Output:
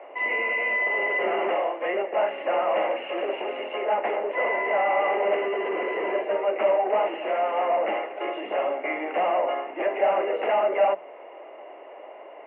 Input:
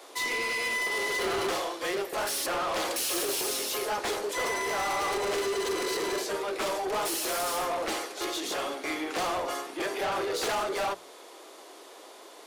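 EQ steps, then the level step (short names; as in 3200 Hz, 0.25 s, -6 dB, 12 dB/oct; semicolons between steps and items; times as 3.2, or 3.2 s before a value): elliptic high-pass 190 Hz; rippled Chebyshev low-pass 2900 Hz, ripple 9 dB; bell 590 Hz +9 dB 0.3 oct; +7.5 dB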